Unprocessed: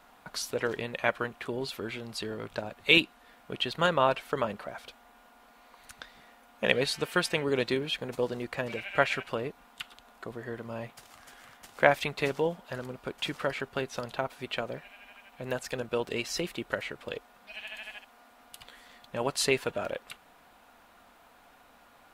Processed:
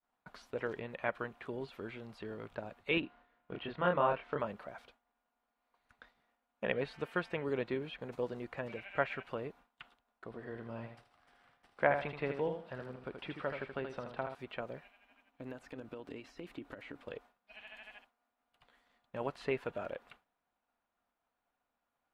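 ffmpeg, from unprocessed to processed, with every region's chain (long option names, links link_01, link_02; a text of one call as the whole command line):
ffmpeg -i in.wav -filter_complex "[0:a]asettb=1/sr,asplit=3[link_01][link_02][link_03];[link_01]atrim=end=3.004[link_04];[link_02]atrim=start=3:end=4.4,asetpts=PTS-STARTPTS,afade=type=in:duration=0.004:curve=qsin,afade=type=out:start_time=1.396:duration=0.004:curve=qsin,lowpass=3100,asplit=2[link_05][link_06];[link_06]adelay=28,volume=-2dB[link_07];[link_05][link_07]amix=inputs=2:normalize=0,atrim=end_sample=61740[link_08];[link_03]atrim=start=4.396[link_09];[link_04][link_08]acrossfade=duration=0.004:curve1=hsin:curve2=qsin[link_10];[link_10][link_09]acrossfade=duration=0.004:curve1=qsin:curve2=hsin,asettb=1/sr,asplit=3[link_11][link_12][link_13];[link_11]atrim=end=10.244[link_14];[link_12]atrim=start=10.24:end=14.35,asetpts=PTS-STARTPTS,afade=type=in:duration=0.004:curve=qsin,afade=type=out:start_time=4.106:duration=0.004:curve=qsin,lowpass=8500,equalizer=frequency=6700:width_type=o:width=0.23:gain=-12,aecho=1:1:78|156|234:0.447|0.121|0.0326,atrim=end_sample=181251[link_15];[link_13]atrim=start=14.346[link_16];[link_14][link_15]acrossfade=duration=0.004:curve1=hsin:curve2=qsin[link_17];[link_17][link_16]acrossfade=duration=0.004:curve1=qsin:curve2=hsin,asettb=1/sr,asplit=3[link_18][link_19][link_20];[link_18]atrim=end=15.094[link_21];[link_19]atrim=start=15.09:end=17.03,asetpts=PTS-STARTPTS,afade=type=in:duration=0.004:curve=qsin,afade=type=out:start_time=1.936:duration=0.004:curve=qsin,acompressor=threshold=-36dB:ratio=6:attack=3.2:release=140:knee=1:detection=peak,equalizer=frequency=280:width=5.3:gain=13.5[link_22];[link_20]atrim=start=17.026[link_23];[link_21][link_22]acrossfade=duration=0.004:curve1=hsin:curve2=qsin[link_24];[link_24][link_23]acrossfade=duration=0.004:curve1=qsin:curve2=hsin,acrossover=split=2800[link_25][link_26];[link_26]acompressor=threshold=-51dB:ratio=4:attack=1:release=60[link_27];[link_25][link_27]amix=inputs=2:normalize=0,agate=range=-33dB:threshold=-45dB:ratio=3:detection=peak,highshelf=frequency=5100:gain=-10.5,volume=-7dB" out.wav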